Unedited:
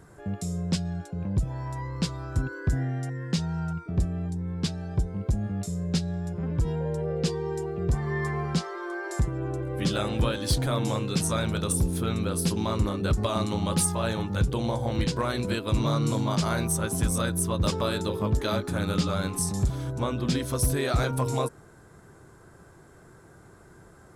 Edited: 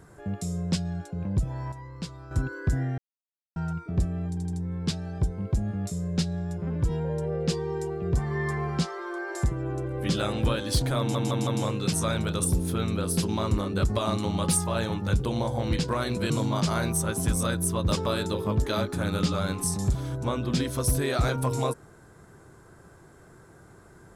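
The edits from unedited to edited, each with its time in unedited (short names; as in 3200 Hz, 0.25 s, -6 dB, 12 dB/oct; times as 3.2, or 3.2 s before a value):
1.72–2.31 gain -8 dB
2.98–3.56 mute
4.29 stutter 0.08 s, 4 plays
10.75 stutter 0.16 s, 4 plays
15.58–16.05 cut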